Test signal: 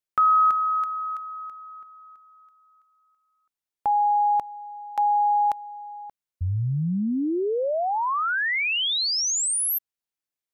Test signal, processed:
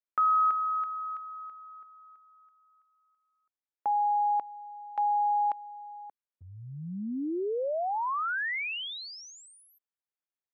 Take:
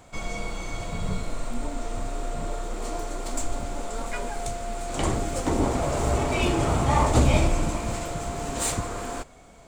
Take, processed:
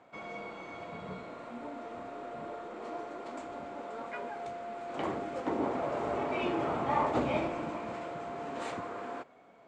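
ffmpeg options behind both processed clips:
ffmpeg -i in.wav -af "highpass=250,lowpass=2300,volume=-5.5dB" out.wav

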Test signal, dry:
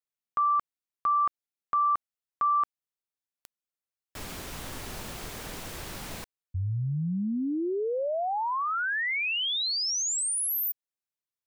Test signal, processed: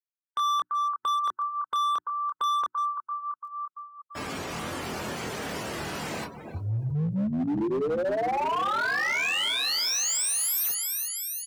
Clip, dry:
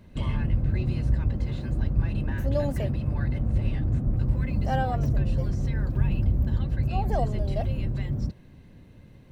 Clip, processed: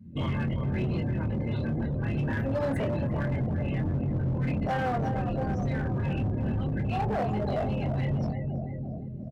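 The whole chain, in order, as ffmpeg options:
ffmpeg -i in.wav -af "alimiter=limit=-19dB:level=0:latency=1:release=34,aecho=1:1:339|678|1017|1356|1695|2034|2373:0.355|0.213|0.128|0.0766|0.046|0.0276|0.0166,acontrast=49,bandreject=frequency=60:width_type=h:width=6,bandreject=frequency=120:width_type=h:width=6,bandreject=frequency=180:width_type=h:width=6,bandreject=frequency=240:width_type=h:width=6,bandreject=frequency=300:width_type=h:width=6,bandreject=frequency=360:width_type=h:width=6,flanger=delay=22.5:depth=4.3:speed=0.24,afftdn=noise_reduction=31:noise_floor=-43,highpass=130,equalizer=frequency=3700:width=4.7:gain=-3.5,acompressor=threshold=-42dB:ratio=1.5:attack=1.3:release=43:knee=1:detection=peak,volume=32dB,asoftclip=hard,volume=-32dB,volume=8dB" out.wav

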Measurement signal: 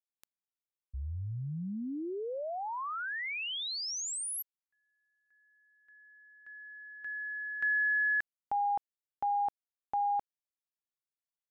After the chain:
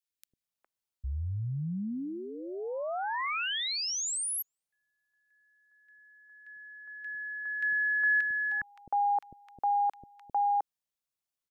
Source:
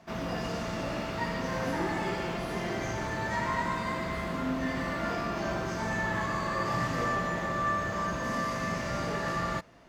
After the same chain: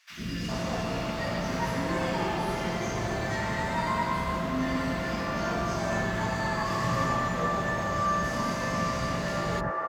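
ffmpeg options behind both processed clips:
ffmpeg -i in.wav -filter_complex "[0:a]acrossover=split=360|1700[link_01][link_02][link_03];[link_01]adelay=100[link_04];[link_02]adelay=410[link_05];[link_04][link_05][link_03]amix=inputs=3:normalize=0,volume=4dB" out.wav

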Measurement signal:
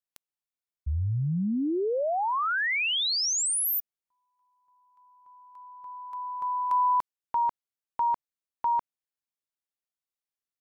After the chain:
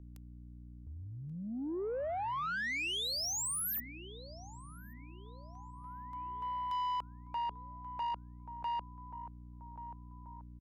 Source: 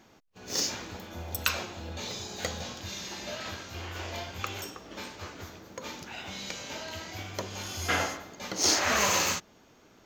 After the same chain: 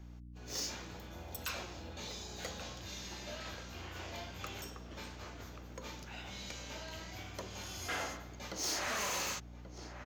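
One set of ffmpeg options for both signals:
ffmpeg -i in.wav -filter_complex "[0:a]asplit=2[link_01][link_02];[link_02]adelay=1133,lowpass=frequency=1500:poles=1,volume=-13dB,asplit=2[link_03][link_04];[link_04]adelay=1133,lowpass=frequency=1500:poles=1,volume=0.51,asplit=2[link_05][link_06];[link_06]adelay=1133,lowpass=frequency=1500:poles=1,volume=0.51,asplit=2[link_07][link_08];[link_08]adelay=1133,lowpass=frequency=1500:poles=1,volume=0.51,asplit=2[link_09][link_10];[link_10]adelay=1133,lowpass=frequency=1500:poles=1,volume=0.51[link_11];[link_03][link_05][link_07][link_09][link_11]amix=inputs=5:normalize=0[link_12];[link_01][link_12]amix=inputs=2:normalize=0,aeval=exprs='val(0)+0.00794*(sin(2*PI*60*n/s)+sin(2*PI*2*60*n/s)/2+sin(2*PI*3*60*n/s)/3+sin(2*PI*4*60*n/s)/4+sin(2*PI*5*60*n/s)/5)':channel_layout=same,volume=19.5dB,asoftclip=hard,volume=-19.5dB,acrossover=split=260[link_13][link_14];[link_13]acompressor=threshold=-37dB:ratio=6:attack=0.32:release=268:knee=2.83:detection=peak[link_15];[link_15][link_14]amix=inputs=2:normalize=0,asoftclip=type=tanh:threshold=-25dB,volume=-7dB" out.wav

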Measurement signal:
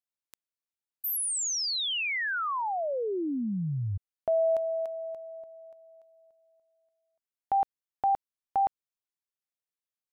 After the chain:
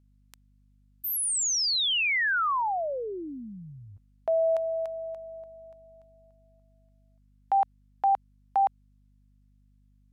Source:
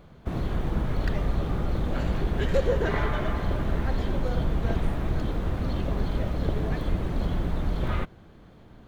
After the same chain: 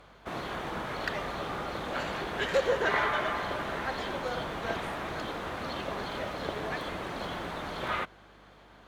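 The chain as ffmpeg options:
ffmpeg -i in.wav -af "crystalizer=i=8:c=0,bandpass=frequency=980:width_type=q:width=0.71:csg=0,aeval=exprs='val(0)+0.000891*(sin(2*PI*50*n/s)+sin(2*PI*2*50*n/s)/2+sin(2*PI*3*50*n/s)/3+sin(2*PI*4*50*n/s)/4+sin(2*PI*5*50*n/s)/5)':channel_layout=same" out.wav

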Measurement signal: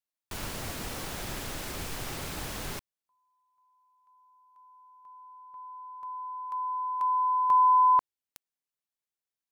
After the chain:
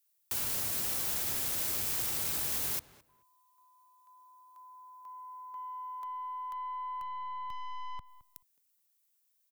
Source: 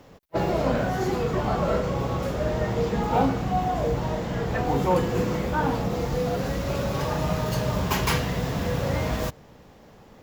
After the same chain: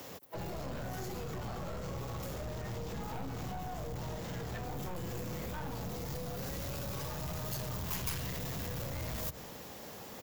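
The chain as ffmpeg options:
ffmpeg -i in.wav -filter_complex "[0:a]highpass=63,aeval=exprs='(tanh(7.94*val(0)+0.45)-tanh(0.45))/7.94':channel_layout=same,bass=frequency=250:gain=-4,treble=frequency=4000:gain=0,acrossover=split=140[link_01][link_02];[link_02]acompressor=threshold=-44dB:ratio=4:attack=18:release=160:knee=2.83:detection=peak[link_03];[link_01][link_03]amix=inputs=2:normalize=0,aeval=exprs='0.0631*(cos(1*acos(clip(val(0)/0.0631,-1,1)))-cos(1*PI/2))+0.0158*(cos(5*acos(clip(val(0)/0.0631,-1,1)))-cos(5*PI/2))':channel_layout=same,alimiter=level_in=8.5dB:limit=-24dB:level=0:latency=1,volume=-8.5dB,aemphasis=mode=production:type=75kf,asplit=2[link_04][link_05];[link_05]adelay=216,lowpass=frequency=2000:poles=1,volume=-16dB,asplit=2[link_06][link_07];[link_07]adelay=216,lowpass=frequency=2000:poles=1,volume=0.21[link_08];[link_04][link_06][link_08]amix=inputs=3:normalize=0,volume=-3dB" out.wav

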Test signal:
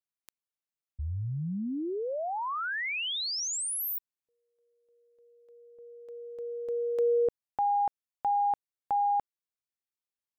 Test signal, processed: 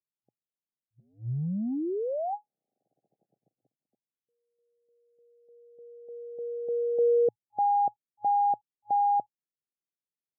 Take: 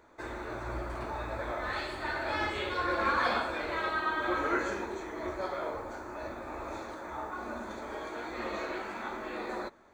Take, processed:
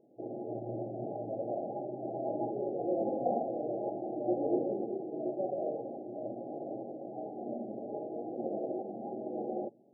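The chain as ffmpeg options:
ffmpeg -i in.wav -af "adynamicsmooth=sensitivity=3:basefreq=520,afftfilt=real='re*between(b*sr/4096,110,830)':imag='im*between(b*sr/4096,110,830)':win_size=4096:overlap=0.75,volume=3dB" out.wav

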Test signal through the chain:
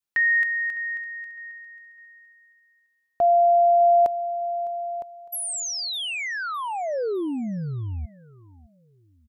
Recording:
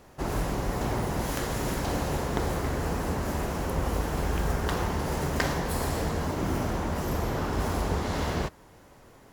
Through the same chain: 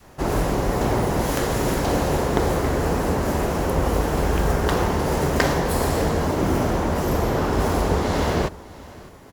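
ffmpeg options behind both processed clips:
ffmpeg -i in.wav -af "aecho=1:1:607|1214|1821:0.0944|0.033|0.0116,adynamicequalizer=threshold=0.0112:dfrequency=460:dqfactor=0.84:tfrequency=460:tqfactor=0.84:attack=5:release=100:ratio=0.375:range=2:mode=boostabove:tftype=bell,volume=6dB" out.wav

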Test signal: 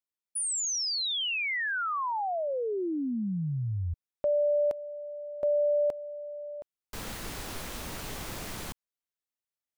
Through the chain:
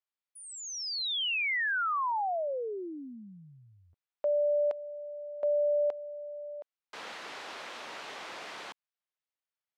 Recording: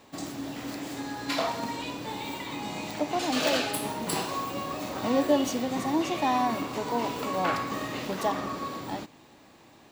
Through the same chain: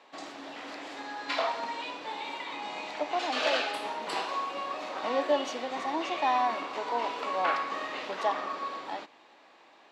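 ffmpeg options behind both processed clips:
ffmpeg -i in.wav -af "highpass=560,lowpass=3800,volume=1dB" out.wav

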